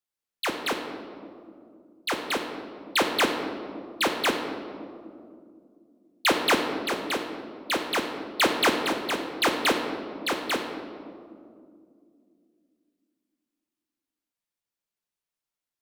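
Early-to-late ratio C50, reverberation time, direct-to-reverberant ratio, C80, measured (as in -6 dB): 5.5 dB, 2.4 s, 2.5 dB, 6.5 dB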